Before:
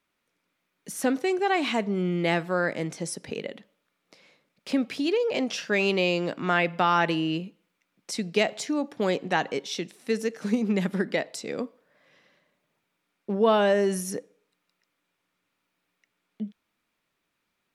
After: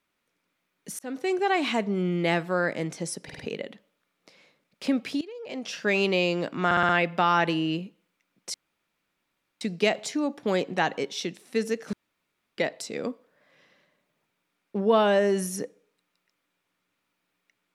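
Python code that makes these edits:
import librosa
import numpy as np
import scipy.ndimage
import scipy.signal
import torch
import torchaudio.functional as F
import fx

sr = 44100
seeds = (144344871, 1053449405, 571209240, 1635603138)

y = fx.edit(x, sr, fx.fade_in_span(start_s=0.99, length_s=0.34),
    fx.stutter(start_s=3.24, slice_s=0.05, count=4),
    fx.fade_in_from(start_s=5.06, length_s=0.62, curve='qua', floor_db=-18.5),
    fx.stutter(start_s=6.5, slice_s=0.06, count=5),
    fx.insert_room_tone(at_s=8.15, length_s=1.07),
    fx.room_tone_fill(start_s=10.47, length_s=0.65), tone=tone)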